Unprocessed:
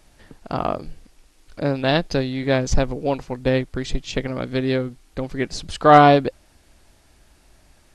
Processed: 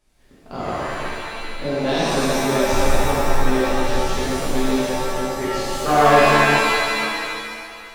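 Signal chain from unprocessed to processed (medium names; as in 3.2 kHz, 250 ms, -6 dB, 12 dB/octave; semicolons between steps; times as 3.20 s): waveshaping leveller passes 1; pitch-shifted reverb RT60 2.2 s, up +7 st, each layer -2 dB, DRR -9.5 dB; trim -14 dB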